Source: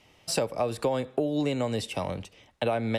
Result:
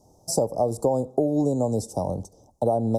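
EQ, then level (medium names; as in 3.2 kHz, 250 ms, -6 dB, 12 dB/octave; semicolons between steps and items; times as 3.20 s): Chebyshev band-stop 820–5900 Hz, order 3; +5.5 dB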